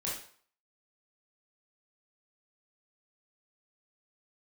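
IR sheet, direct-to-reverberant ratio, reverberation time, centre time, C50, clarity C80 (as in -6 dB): -6.0 dB, 0.50 s, 44 ms, 3.0 dB, 8.5 dB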